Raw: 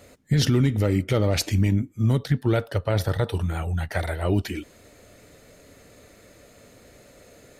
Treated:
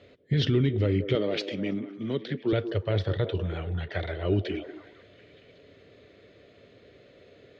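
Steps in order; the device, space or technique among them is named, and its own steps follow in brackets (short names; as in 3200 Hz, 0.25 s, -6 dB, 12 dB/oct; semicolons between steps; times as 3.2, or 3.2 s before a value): guitar cabinet (speaker cabinet 83–4000 Hz, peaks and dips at 100 Hz +3 dB, 220 Hz -3 dB, 400 Hz +6 dB, 860 Hz -9 dB, 1300 Hz -4 dB, 3300 Hz +6 dB); delay with a stepping band-pass 0.184 s, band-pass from 390 Hz, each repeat 0.7 oct, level -8 dB; 1.15–2.53 HPF 180 Hz 24 dB/oct; gain -4 dB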